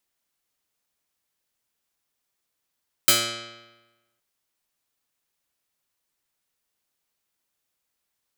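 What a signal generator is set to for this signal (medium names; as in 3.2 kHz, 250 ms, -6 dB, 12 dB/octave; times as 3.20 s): plucked string A#2, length 1.12 s, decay 1.15 s, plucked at 0.13, medium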